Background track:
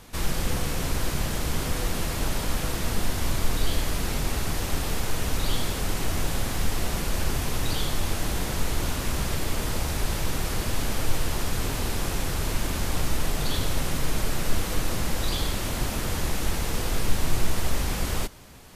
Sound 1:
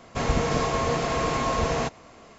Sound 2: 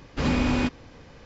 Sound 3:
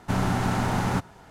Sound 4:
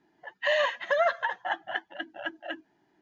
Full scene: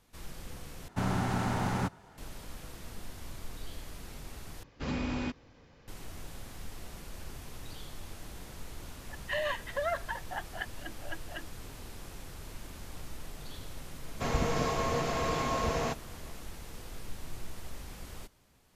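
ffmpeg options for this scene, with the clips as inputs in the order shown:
-filter_complex "[0:a]volume=-18dB[a];[4:a]acrossover=split=820[b][c];[b]aeval=exprs='val(0)*(1-0.5/2+0.5/2*cos(2*PI*5.4*n/s))':c=same[d];[c]aeval=exprs='val(0)*(1-0.5/2-0.5/2*cos(2*PI*5.4*n/s))':c=same[e];[d][e]amix=inputs=2:normalize=0[f];[a]asplit=3[g][h][i];[g]atrim=end=0.884[j];[3:a]atrim=end=1.3,asetpts=PTS-STARTPTS,volume=-6dB[k];[h]atrim=start=2.176:end=4.634[l];[2:a]atrim=end=1.25,asetpts=PTS-STARTPTS,volume=-10.5dB[m];[i]atrim=start=5.876[n];[f]atrim=end=3.01,asetpts=PTS-STARTPTS,volume=-5.5dB,afade=t=in:d=0.004:c=hsin,afade=t=out:st=3.006:d=0.004:c=hsin,adelay=8860[o];[1:a]atrim=end=2.38,asetpts=PTS-STARTPTS,volume=-6dB,afade=t=in:d=0.004:c=hsin,afade=t=out:st=2.376:d=0.004:c=hsin,adelay=14050[p];[j][k]acrossfade=d=0.004:c1=hsin:c2=hsin[q];[q][l]acrossfade=d=0.004:c1=hsin:c2=hsin[r];[r][m]acrossfade=d=0.004:c1=hsin:c2=hsin[s];[s][n]acrossfade=d=0.004:c1=hsin:c2=hsin[t];[t][o][p]amix=inputs=3:normalize=0"

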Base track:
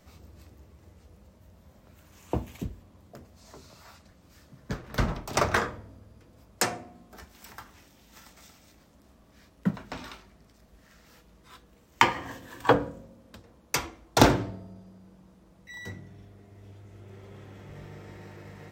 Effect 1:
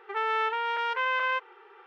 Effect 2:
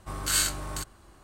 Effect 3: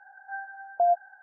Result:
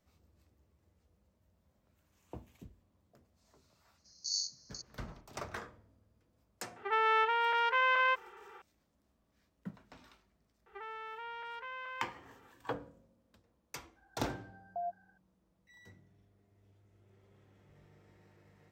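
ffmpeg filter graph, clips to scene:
-filter_complex "[1:a]asplit=2[a][b];[0:a]volume=-18dB[c];[2:a]asuperpass=centerf=5300:order=20:qfactor=2.1[d];[b]alimiter=level_in=1dB:limit=-24dB:level=0:latency=1:release=90,volume=-1dB[e];[d]atrim=end=1.23,asetpts=PTS-STARTPTS,volume=-4dB,afade=t=in:d=0.004:c=hsin,afade=t=out:st=1.226:d=0.004:c=hsin,adelay=3980[f];[a]atrim=end=1.86,asetpts=PTS-STARTPTS,volume=-1dB,afade=t=in:d=0.004:c=hsin,afade=t=out:st=1.856:d=0.004:c=hsin,adelay=6760[g];[e]atrim=end=1.86,asetpts=PTS-STARTPTS,volume=-10dB,afade=t=in:d=0.004:c=hsin,afade=t=out:st=1.856:d=0.004:c=hsin,adelay=470106S[h];[3:a]atrim=end=1.22,asetpts=PTS-STARTPTS,volume=-16.5dB,afade=t=in:d=0.004:c=hsin,afade=t=out:st=1.216:d=0.004:c=hsin,adelay=615636S[i];[c][f][g][h][i]amix=inputs=5:normalize=0"

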